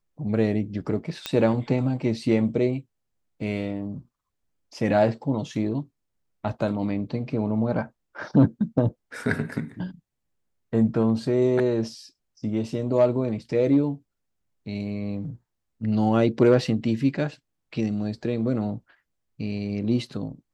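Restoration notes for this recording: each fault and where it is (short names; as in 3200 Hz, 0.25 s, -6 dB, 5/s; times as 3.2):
1.26 pop -12 dBFS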